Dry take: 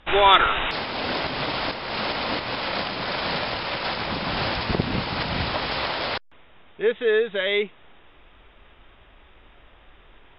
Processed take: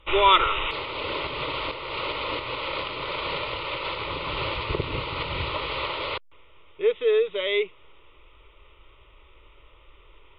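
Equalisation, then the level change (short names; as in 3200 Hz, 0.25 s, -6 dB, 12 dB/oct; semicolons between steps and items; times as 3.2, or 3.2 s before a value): fixed phaser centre 1100 Hz, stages 8; 0.0 dB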